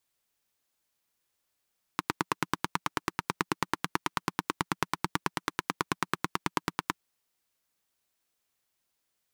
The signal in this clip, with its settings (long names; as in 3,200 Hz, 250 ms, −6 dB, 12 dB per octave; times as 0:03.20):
pulse-train model of a single-cylinder engine, steady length 5.01 s, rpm 1,100, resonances 180/310/1,000 Hz